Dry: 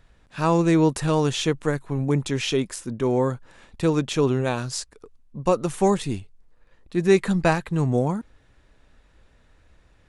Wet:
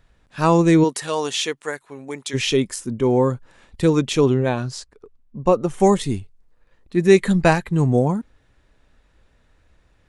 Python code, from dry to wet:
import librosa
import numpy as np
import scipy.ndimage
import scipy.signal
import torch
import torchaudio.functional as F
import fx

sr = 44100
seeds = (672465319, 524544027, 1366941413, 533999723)

y = fx.highpass(x, sr, hz=fx.line((0.83, 540.0), (2.33, 1500.0)), slope=6, at=(0.83, 2.33), fade=0.02)
y = fx.noise_reduce_blind(y, sr, reduce_db=6)
y = fx.lowpass(y, sr, hz=2300.0, slope=6, at=(4.34, 5.8))
y = F.gain(torch.from_numpy(y), 4.5).numpy()